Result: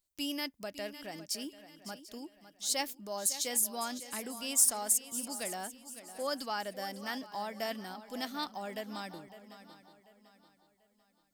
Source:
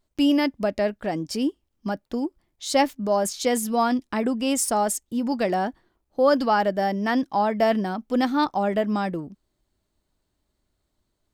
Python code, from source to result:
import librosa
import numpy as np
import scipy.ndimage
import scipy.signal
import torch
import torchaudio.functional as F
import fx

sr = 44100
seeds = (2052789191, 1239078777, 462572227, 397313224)

y = scipy.signal.lfilter([1.0, -0.9], [1.0], x)
y = fx.echo_swing(y, sr, ms=741, ratio=3, feedback_pct=33, wet_db=-13.5)